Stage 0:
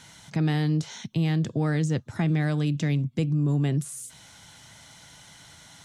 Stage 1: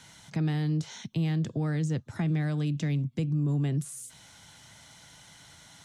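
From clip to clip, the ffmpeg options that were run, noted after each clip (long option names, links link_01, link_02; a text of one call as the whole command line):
ffmpeg -i in.wav -filter_complex "[0:a]acrossover=split=250[link_01][link_02];[link_02]acompressor=threshold=-34dB:ratio=2[link_03];[link_01][link_03]amix=inputs=2:normalize=0,volume=-3dB" out.wav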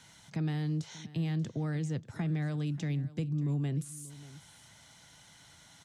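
ffmpeg -i in.wav -af "aecho=1:1:586:0.126,volume=-4.5dB" out.wav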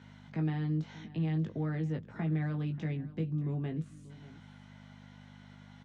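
ffmpeg -i in.wav -filter_complex "[0:a]aeval=exprs='val(0)+0.00501*(sin(2*PI*50*n/s)+sin(2*PI*2*50*n/s)/2+sin(2*PI*3*50*n/s)/3+sin(2*PI*4*50*n/s)/4+sin(2*PI*5*50*n/s)/5)':channel_layout=same,highpass=160,lowpass=2400,asplit=2[link_01][link_02];[link_02]adelay=19,volume=-5dB[link_03];[link_01][link_03]amix=inputs=2:normalize=0" out.wav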